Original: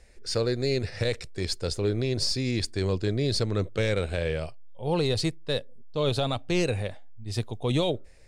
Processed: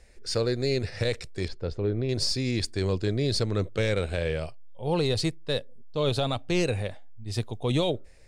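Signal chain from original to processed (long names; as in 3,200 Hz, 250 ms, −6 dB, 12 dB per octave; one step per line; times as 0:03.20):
0:01.48–0:02.09: head-to-tape spacing loss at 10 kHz 32 dB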